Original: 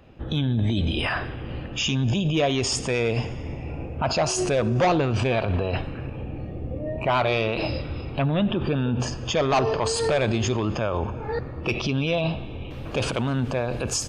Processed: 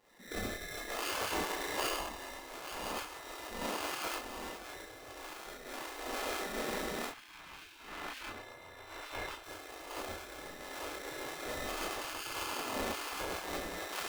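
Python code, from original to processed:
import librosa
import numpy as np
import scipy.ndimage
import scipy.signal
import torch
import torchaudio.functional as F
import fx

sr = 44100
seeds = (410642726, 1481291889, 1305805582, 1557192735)

y = fx.high_shelf(x, sr, hz=5500.0, db=-5.5)
y = fx.echo_diffused(y, sr, ms=910, feedback_pct=60, wet_db=-6)
y = fx.rev_spring(y, sr, rt60_s=2.7, pass_ms=(34,), chirp_ms=30, drr_db=-7.5)
y = fx.over_compress(y, sr, threshold_db=-18.0, ratio=-0.5)
y = fx.brickwall_bandstop(y, sr, low_hz=250.0, high_hz=1300.0)
y = fx.sample_hold(y, sr, seeds[0], rate_hz=1900.0, jitter_pct=0)
y = fx.bass_treble(y, sr, bass_db=-11, treble_db=-10, at=(7.11, 9.44))
y = fx.chorus_voices(y, sr, voices=4, hz=0.42, base_ms=25, depth_ms=4.4, mix_pct=40)
y = fx.spec_gate(y, sr, threshold_db=-15, keep='weak')
y = y * 10.0 ** (-5.0 / 20.0)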